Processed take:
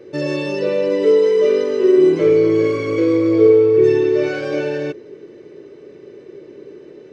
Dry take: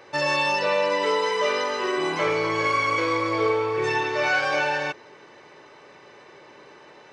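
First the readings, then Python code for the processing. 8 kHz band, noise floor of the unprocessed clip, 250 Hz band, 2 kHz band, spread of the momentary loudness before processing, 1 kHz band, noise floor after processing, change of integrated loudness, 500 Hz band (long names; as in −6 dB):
can't be measured, −49 dBFS, +15.0 dB, −6.5 dB, 3 LU, −11.0 dB, −41 dBFS, +8.0 dB, +11.5 dB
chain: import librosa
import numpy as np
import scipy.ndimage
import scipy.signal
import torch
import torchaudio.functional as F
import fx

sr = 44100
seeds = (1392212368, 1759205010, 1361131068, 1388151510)

y = fx.low_shelf_res(x, sr, hz=590.0, db=13.5, q=3.0)
y = y * 10.0 ** (-5.0 / 20.0)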